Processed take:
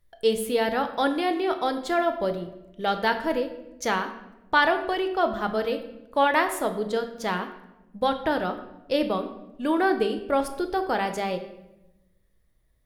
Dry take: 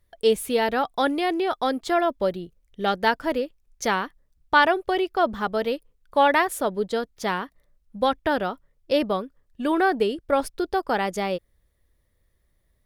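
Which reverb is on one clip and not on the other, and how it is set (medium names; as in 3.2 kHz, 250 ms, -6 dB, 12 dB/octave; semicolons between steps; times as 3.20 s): simulated room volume 370 m³, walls mixed, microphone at 0.58 m; trim -2.5 dB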